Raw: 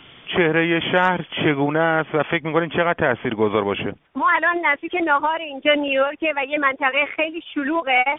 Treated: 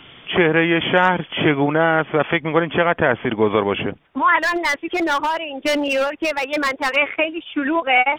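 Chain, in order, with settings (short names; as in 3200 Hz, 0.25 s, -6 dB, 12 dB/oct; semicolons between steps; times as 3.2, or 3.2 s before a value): 4.41–6.96 overloaded stage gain 17.5 dB; gain +2 dB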